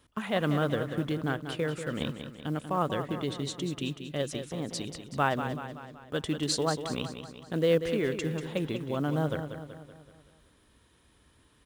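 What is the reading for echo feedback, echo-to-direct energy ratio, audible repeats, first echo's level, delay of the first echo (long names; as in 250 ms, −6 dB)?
53%, −7.5 dB, 5, −9.0 dB, 189 ms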